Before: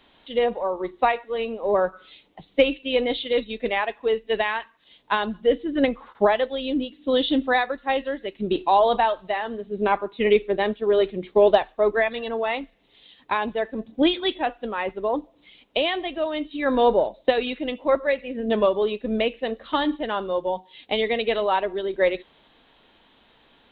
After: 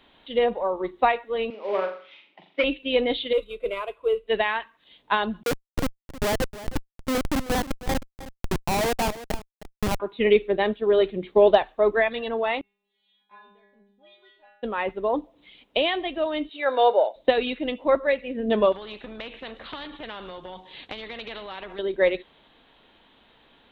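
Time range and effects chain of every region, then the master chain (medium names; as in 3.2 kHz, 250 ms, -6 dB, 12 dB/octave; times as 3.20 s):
1.50–2.64 s: CVSD coder 32 kbps + cabinet simulation 390–3100 Hz, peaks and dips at 470 Hz -8 dB, 720 Hz -9 dB, 1.1 kHz -3 dB, 1.6 kHz -6 dB, 2.3 kHz +5 dB + flutter echo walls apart 7.2 m, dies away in 0.42 s
3.33–4.28 s: CVSD coder 64 kbps + low-pass 1.8 kHz 6 dB/octave + static phaser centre 1.2 kHz, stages 8
5.43–10.00 s: Schmitt trigger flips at -17.5 dBFS + delay 313 ms -15 dB
12.61–14.63 s: bass shelf 350 Hz -7 dB + compression 3:1, threshold -33 dBFS + inharmonic resonator 200 Hz, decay 0.83 s, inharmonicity 0.002
16.49–17.16 s: high-pass 400 Hz 24 dB/octave + comb 1.4 ms, depth 33%
18.72–21.79 s: compression 5:1, threshold -28 dBFS + distance through air 63 m + spectrum-flattening compressor 2:1
whole clip: none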